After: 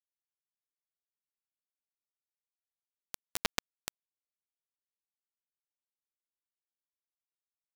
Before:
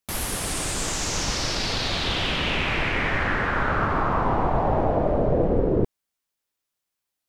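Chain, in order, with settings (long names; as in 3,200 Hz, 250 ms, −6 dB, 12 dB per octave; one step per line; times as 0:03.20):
source passing by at 0:03.16, 7 m/s, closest 3.7 metres
brick-wall band-pass 190–8,800 Hz
stiff-string resonator 240 Hz, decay 0.31 s, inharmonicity 0.002
bit reduction 5 bits
speed change −6%
level +13.5 dB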